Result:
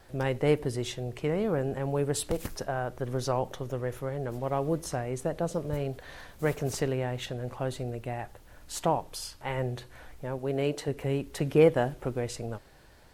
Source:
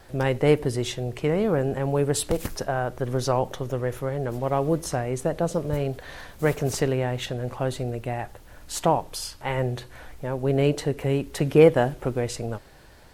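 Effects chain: 10.38–10.88 low shelf 150 Hz -9.5 dB; gain -5.5 dB

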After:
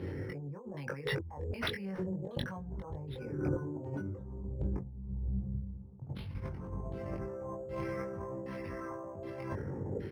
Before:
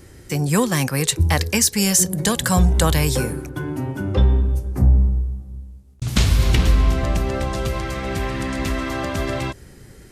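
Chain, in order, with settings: formant sharpening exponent 1.5; HPF 84 Hz 24 dB/oct; limiter -15.5 dBFS, peak gain reduction 10.5 dB; LFO low-pass saw down 1.3 Hz 610–3500 Hz; small resonant body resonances 490/880 Hz, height 8 dB, ringing for 20 ms; negative-ratio compressor -35 dBFS, ratio -1; doubler 21 ms -3 dB; decimation joined by straight lines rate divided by 6×; gain -6 dB

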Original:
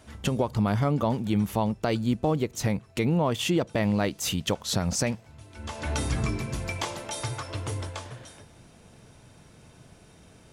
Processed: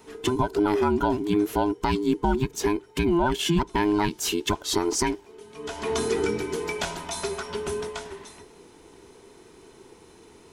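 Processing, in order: band inversion scrambler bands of 500 Hz; gain +2 dB

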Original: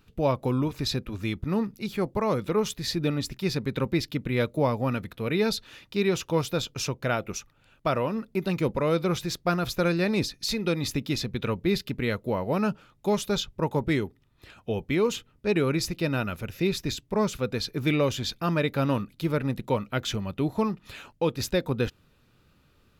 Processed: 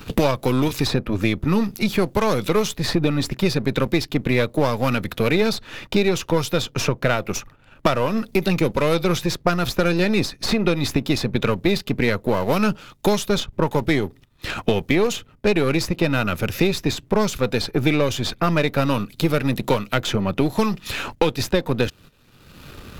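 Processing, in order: half-wave gain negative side -7 dB; gate -54 dBFS, range -12 dB; three-band squash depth 100%; gain +8.5 dB

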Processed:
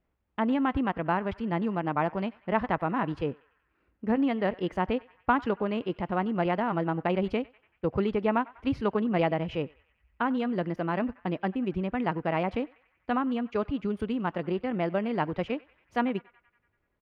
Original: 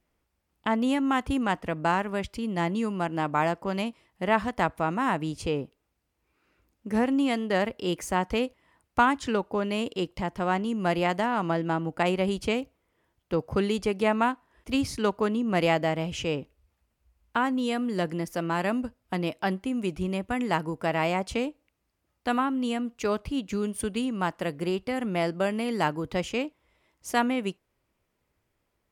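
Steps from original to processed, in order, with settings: air absorption 350 m; narrowing echo 0.161 s, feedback 67%, band-pass 1700 Hz, level -20 dB; tempo 1.7×

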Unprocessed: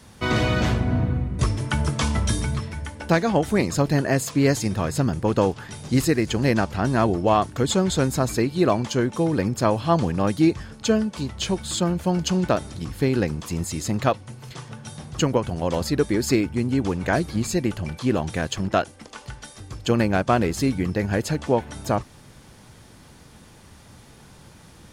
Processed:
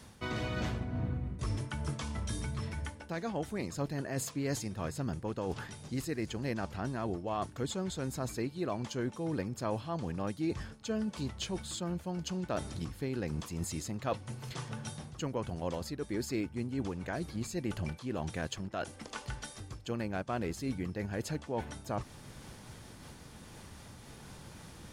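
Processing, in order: reverse; compressor 4:1, threshold -32 dBFS, peak gain reduction 16 dB; reverse; noise-modulated level, depth 55%

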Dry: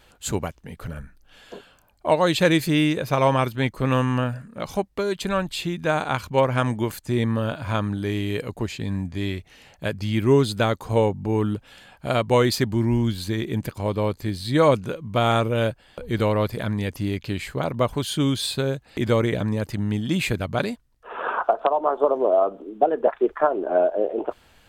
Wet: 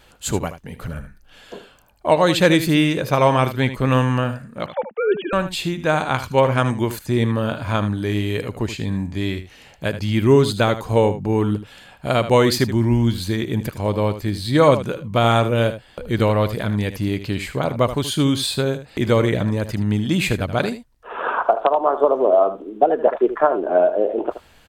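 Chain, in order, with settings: 4.66–5.33 sine-wave speech; on a send: echo 77 ms -12 dB; on the sum: gain +3.5 dB

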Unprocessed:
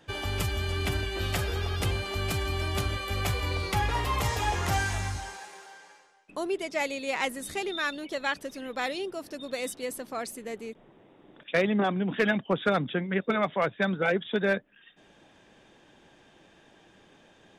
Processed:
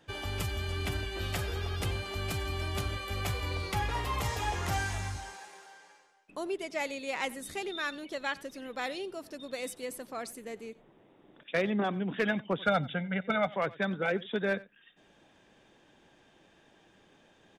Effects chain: 12.62–13.48 comb 1.4 ms, depth 74%; echo 91 ms -21 dB; gain -4.5 dB

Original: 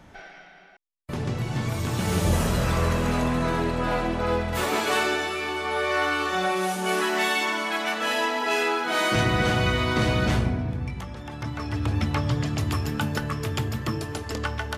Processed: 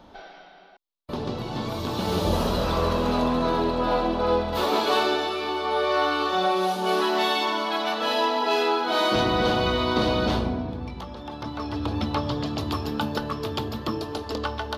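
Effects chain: graphic EQ 125/250/500/1000/2000/4000/8000 Hz -8/+4/+4/+6/-9/+11/-12 dB; gain -1.5 dB

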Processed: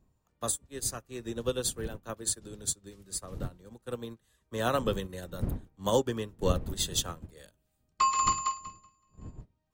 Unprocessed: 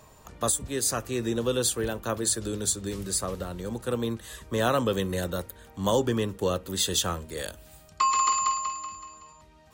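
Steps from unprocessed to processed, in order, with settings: wind noise 150 Hz -35 dBFS; upward expander 2.5:1, over -39 dBFS

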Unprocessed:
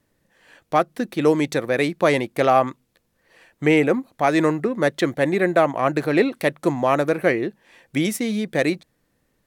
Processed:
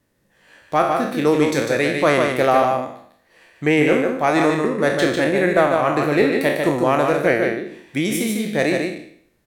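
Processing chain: spectral trails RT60 0.63 s; echo 0.149 s -4.5 dB; added harmonics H 2 -23 dB, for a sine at -1.5 dBFS; gain -1 dB

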